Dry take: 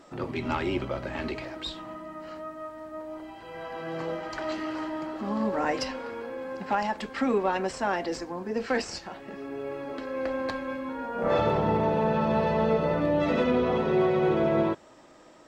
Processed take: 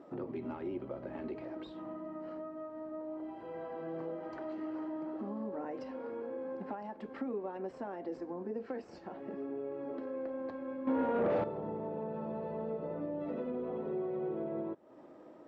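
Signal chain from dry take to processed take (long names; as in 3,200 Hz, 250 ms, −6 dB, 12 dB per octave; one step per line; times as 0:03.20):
downward compressor 4 to 1, threshold −38 dBFS, peak gain reduction 15.5 dB
0:10.87–0:11.44: sine wavefolder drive 9 dB, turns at −26 dBFS
resonant band-pass 350 Hz, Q 0.86
level +2 dB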